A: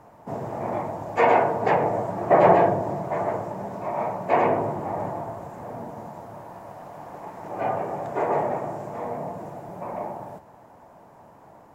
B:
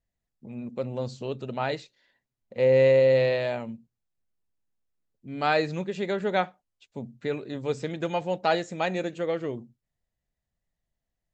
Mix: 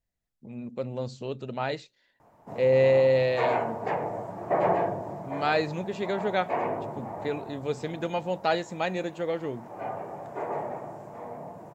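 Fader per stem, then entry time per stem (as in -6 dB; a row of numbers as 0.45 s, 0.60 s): -8.5 dB, -1.5 dB; 2.20 s, 0.00 s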